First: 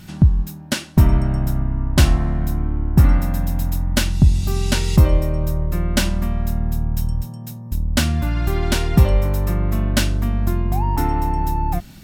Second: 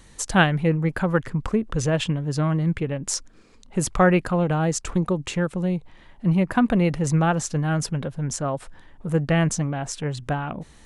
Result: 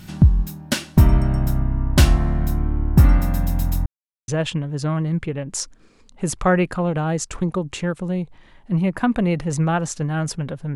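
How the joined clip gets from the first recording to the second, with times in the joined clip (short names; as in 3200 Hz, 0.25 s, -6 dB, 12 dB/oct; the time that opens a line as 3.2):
first
3.86–4.28 mute
4.28 switch to second from 1.82 s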